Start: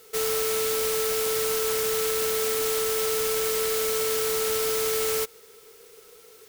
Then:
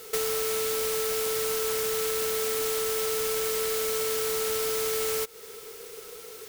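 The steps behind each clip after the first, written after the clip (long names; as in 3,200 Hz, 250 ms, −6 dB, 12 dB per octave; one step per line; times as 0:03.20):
downward compressor 4 to 1, threshold −35 dBFS, peak gain reduction 10.5 dB
level +7.5 dB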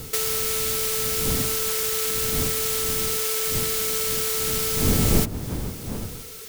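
wind on the microphone 180 Hz −26 dBFS
tilt shelving filter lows −5 dB, about 1,400 Hz
level +1.5 dB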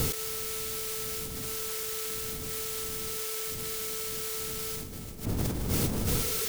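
compressor whose output falls as the input rises −34 dBFS, ratio −1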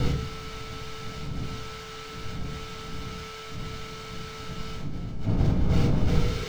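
high-frequency loss of the air 200 metres
convolution reverb, pre-delay 8 ms, DRR 0 dB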